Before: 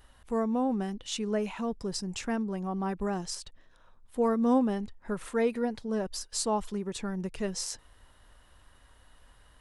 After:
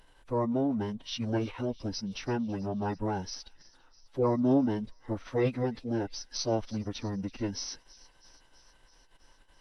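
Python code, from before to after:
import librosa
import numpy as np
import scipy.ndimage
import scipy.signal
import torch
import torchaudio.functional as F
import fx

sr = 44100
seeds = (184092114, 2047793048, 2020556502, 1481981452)

y = fx.pitch_keep_formants(x, sr, semitones=-11.0)
y = fx.echo_wet_highpass(y, sr, ms=328, feedback_pct=68, hz=2500.0, wet_db=-19)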